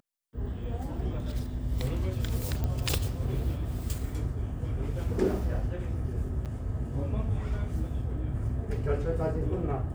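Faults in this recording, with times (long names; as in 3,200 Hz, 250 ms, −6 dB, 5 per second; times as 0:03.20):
0:02.64: click −19 dBFS
0:06.45–0:06.46: drop-out 7.7 ms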